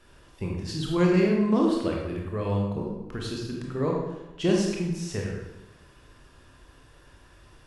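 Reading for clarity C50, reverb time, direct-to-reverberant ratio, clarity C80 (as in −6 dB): 1.0 dB, 1.0 s, −1.5 dB, 3.5 dB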